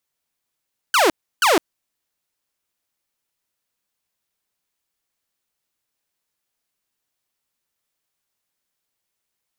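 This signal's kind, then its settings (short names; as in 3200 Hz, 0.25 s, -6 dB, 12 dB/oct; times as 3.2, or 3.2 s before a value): burst of laser zaps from 1600 Hz, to 290 Hz, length 0.16 s saw, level -10 dB, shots 2, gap 0.32 s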